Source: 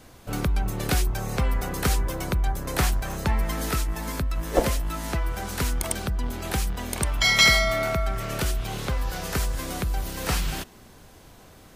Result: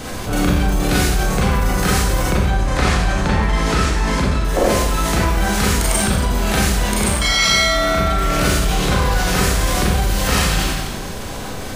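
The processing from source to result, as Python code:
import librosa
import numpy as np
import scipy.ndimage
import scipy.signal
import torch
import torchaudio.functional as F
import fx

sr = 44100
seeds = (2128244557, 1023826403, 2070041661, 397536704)

y = fx.air_absorb(x, sr, metres=66.0, at=(2.3, 4.45))
y = fx.rider(y, sr, range_db=4, speed_s=0.5)
y = fx.peak_eq(y, sr, hz=13000.0, db=-6.5, octaves=0.39)
y = fx.rev_schroeder(y, sr, rt60_s=0.9, comb_ms=30, drr_db=-8.0)
y = fx.env_flatten(y, sr, amount_pct=50)
y = y * 10.0 ** (-1.0 / 20.0)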